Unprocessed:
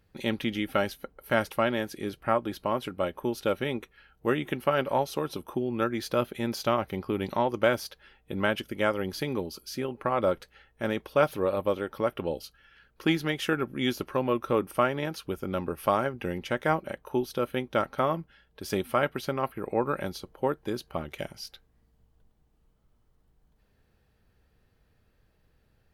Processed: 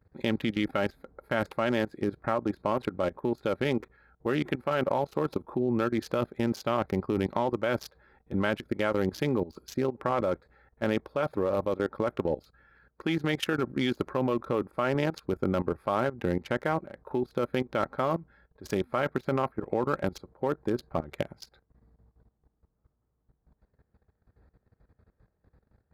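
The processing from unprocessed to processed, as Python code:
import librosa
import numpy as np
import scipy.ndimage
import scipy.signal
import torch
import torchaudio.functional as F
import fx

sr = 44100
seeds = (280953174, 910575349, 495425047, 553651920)

y = fx.wiener(x, sr, points=15)
y = scipy.signal.sosfilt(scipy.signal.butter(4, 41.0, 'highpass', fs=sr, output='sos'), y)
y = fx.level_steps(y, sr, step_db=17)
y = y * librosa.db_to_amplitude(7.5)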